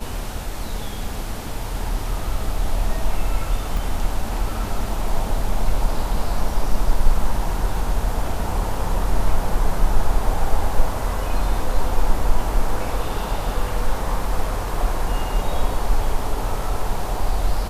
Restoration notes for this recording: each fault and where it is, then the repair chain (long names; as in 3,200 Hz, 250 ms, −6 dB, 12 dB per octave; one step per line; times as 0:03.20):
0:03.77: drop-out 2.2 ms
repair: repair the gap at 0:03.77, 2.2 ms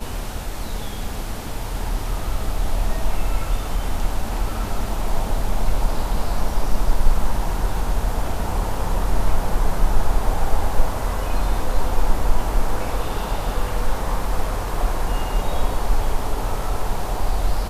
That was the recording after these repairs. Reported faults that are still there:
none of them is left